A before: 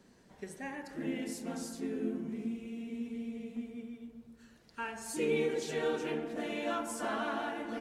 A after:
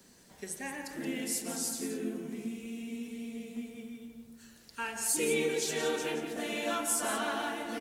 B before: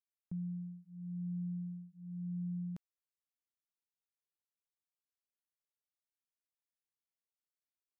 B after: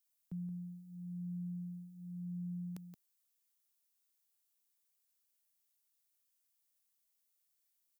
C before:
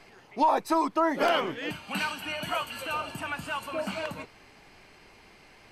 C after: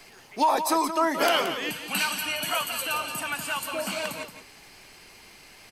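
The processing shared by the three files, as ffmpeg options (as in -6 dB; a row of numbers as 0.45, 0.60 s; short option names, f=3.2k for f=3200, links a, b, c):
-filter_complex "[0:a]acrossover=split=150|1100[a][b][c];[a]acompressor=threshold=-57dB:ratio=6[d];[d][b][c]amix=inputs=3:normalize=0,crystalizer=i=3.5:c=0,aecho=1:1:174:0.335"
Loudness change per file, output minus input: +3.0, -2.0, +3.0 LU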